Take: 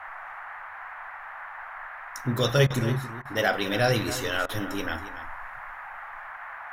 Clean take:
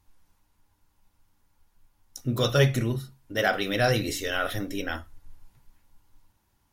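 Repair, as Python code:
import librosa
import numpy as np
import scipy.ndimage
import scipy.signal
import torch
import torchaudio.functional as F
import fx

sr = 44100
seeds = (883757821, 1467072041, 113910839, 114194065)

y = fx.fix_interpolate(x, sr, at_s=(2.67, 3.22, 4.46), length_ms=31.0)
y = fx.noise_reduce(y, sr, print_start_s=0.87, print_end_s=1.37, reduce_db=28.0)
y = fx.fix_echo_inverse(y, sr, delay_ms=275, level_db=-13.5)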